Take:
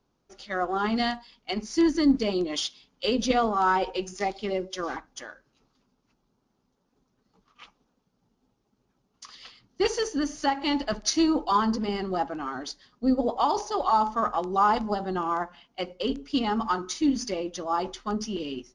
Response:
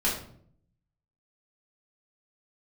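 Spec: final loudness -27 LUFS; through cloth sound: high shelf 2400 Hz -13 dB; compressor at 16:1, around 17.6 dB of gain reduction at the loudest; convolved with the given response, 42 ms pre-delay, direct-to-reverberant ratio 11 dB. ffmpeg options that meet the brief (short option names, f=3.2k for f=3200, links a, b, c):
-filter_complex "[0:a]acompressor=threshold=-35dB:ratio=16,asplit=2[a][b];[1:a]atrim=start_sample=2205,adelay=42[c];[b][c]afir=irnorm=-1:irlink=0,volume=-21.5dB[d];[a][d]amix=inputs=2:normalize=0,highshelf=f=2.4k:g=-13,volume=14dB"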